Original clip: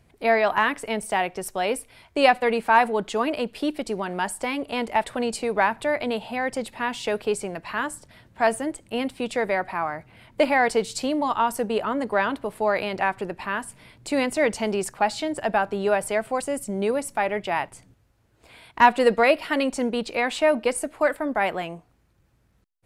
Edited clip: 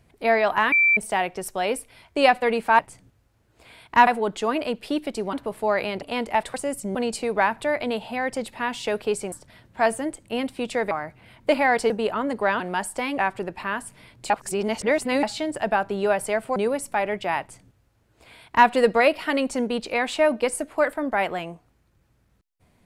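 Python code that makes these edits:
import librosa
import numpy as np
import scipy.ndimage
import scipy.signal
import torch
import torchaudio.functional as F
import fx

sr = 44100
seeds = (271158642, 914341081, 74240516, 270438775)

y = fx.edit(x, sr, fx.bleep(start_s=0.72, length_s=0.25, hz=2340.0, db=-14.5),
    fx.swap(start_s=4.05, length_s=0.58, other_s=12.31, other_length_s=0.69),
    fx.cut(start_s=7.52, length_s=0.41),
    fx.cut(start_s=9.52, length_s=0.3),
    fx.cut(start_s=10.81, length_s=0.8),
    fx.reverse_span(start_s=14.12, length_s=0.93),
    fx.move(start_s=16.38, length_s=0.41, to_s=5.15),
    fx.duplicate(start_s=17.63, length_s=1.28, to_s=2.79), tone=tone)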